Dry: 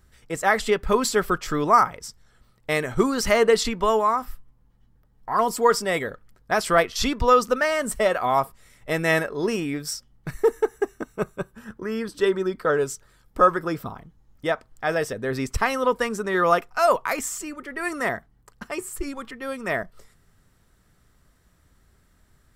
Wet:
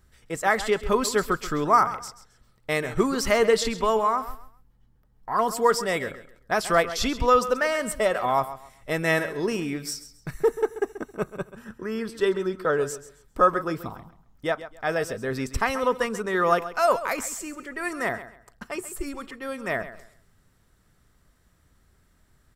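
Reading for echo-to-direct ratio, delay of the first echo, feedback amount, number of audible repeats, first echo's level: −13.5 dB, 134 ms, 25%, 2, −14.0 dB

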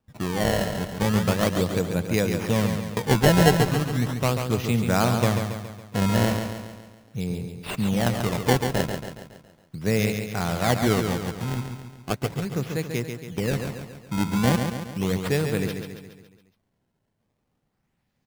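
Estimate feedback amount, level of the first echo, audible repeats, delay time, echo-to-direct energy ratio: 52%, −6.5 dB, 6, 139 ms, −5.0 dB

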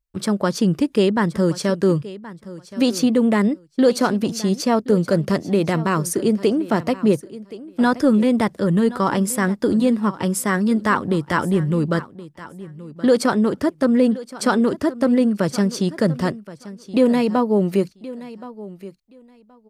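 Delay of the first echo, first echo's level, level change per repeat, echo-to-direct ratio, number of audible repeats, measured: 1,073 ms, −17.0 dB, −15.5 dB, −17.0 dB, 2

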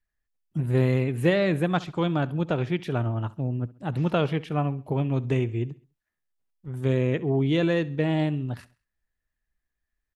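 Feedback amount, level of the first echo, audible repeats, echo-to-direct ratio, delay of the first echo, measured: 41%, −20.0 dB, 2, −19.0 dB, 67 ms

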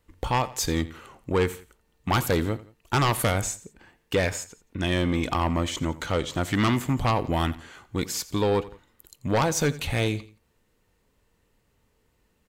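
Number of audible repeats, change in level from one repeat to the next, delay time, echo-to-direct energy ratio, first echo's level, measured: 2, −8.0 dB, 86 ms, −17.5 dB, −18.0 dB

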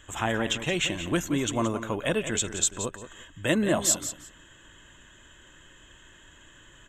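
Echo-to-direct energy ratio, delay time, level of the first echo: −11.0 dB, 175 ms, −11.0 dB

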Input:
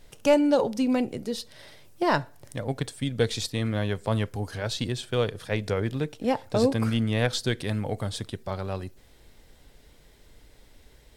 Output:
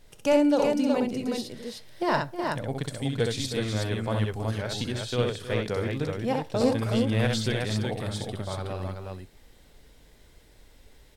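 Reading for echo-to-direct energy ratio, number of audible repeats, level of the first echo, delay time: −0.5 dB, 3, −4.0 dB, 65 ms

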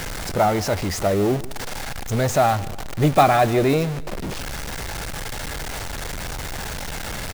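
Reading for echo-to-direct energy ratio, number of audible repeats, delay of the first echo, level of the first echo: −18.5 dB, 2, 150 ms, −19.0 dB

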